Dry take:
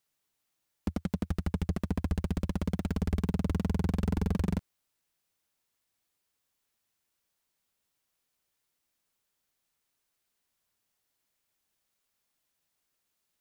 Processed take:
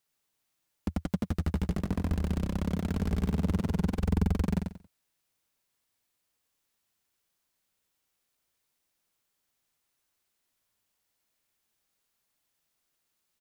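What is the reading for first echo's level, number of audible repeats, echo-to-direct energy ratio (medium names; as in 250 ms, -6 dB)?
-4.5 dB, 3, -4.0 dB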